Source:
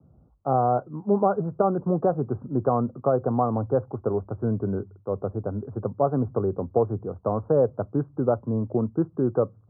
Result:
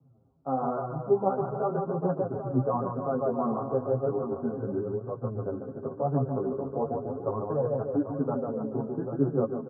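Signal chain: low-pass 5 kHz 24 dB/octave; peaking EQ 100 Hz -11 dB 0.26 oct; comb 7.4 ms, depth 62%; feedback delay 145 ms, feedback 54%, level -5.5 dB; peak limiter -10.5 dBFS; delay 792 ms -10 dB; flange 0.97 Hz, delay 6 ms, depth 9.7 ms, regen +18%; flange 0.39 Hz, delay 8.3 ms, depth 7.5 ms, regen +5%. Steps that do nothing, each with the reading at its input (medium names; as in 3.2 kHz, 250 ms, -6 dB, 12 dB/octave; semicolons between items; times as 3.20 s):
low-pass 5 kHz: input has nothing above 1.4 kHz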